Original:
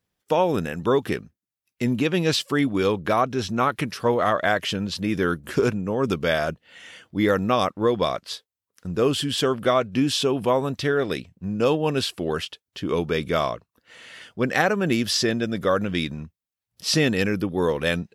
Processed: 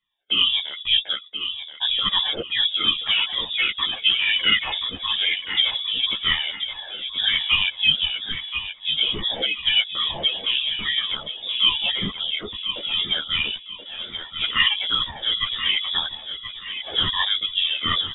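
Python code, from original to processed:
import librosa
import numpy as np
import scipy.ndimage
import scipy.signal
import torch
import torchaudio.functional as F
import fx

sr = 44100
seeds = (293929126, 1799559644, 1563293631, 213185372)

p1 = fx.spec_ripple(x, sr, per_octave=1.8, drift_hz=2.4, depth_db=22)
p2 = p1 + fx.echo_feedback(p1, sr, ms=1029, feedback_pct=36, wet_db=-9, dry=0)
p3 = fx.freq_invert(p2, sr, carrier_hz=3600)
p4 = fx.ensemble(p3, sr)
y = F.gain(torch.from_numpy(p4), -2.0).numpy()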